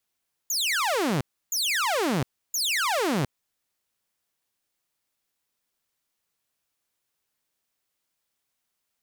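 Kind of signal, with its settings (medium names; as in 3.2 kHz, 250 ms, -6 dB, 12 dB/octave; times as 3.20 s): burst of laser zaps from 7.1 kHz, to 120 Hz, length 0.71 s saw, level -20 dB, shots 3, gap 0.31 s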